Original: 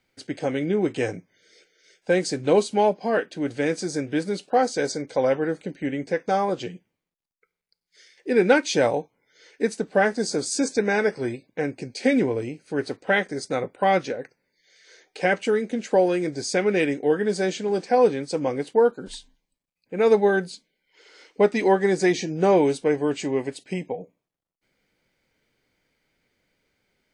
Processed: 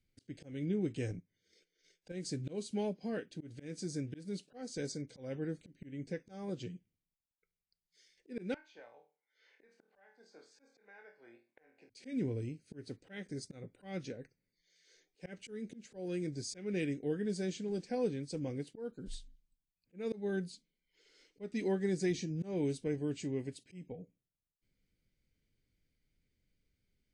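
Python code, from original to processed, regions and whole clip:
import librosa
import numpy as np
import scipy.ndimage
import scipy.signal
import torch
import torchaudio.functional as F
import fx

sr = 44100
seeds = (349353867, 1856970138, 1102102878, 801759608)

y = fx.chain(x, sr, fx.high_shelf(hz=6600.0, db=-5.5),
    fx.transient(attack_db=9, sustain_db=-5), at=(1.1, 2.12))
y = fx.chain(y, sr, fx.ladder_bandpass(hz=1100.0, resonance_pct=40),
    fx.room_flutter(wall_m=4.4, rt60_s=0.28),
    fx.band_squash(depth_pct=100), at=(8.54, 11.9))
y = fx.tone_stack(y, sr, knobs='10-0-1')
y = fx.auto_swell(y, sr, attack_ms=217.0)
y = y * librosa.db_to_amplitude(8.5)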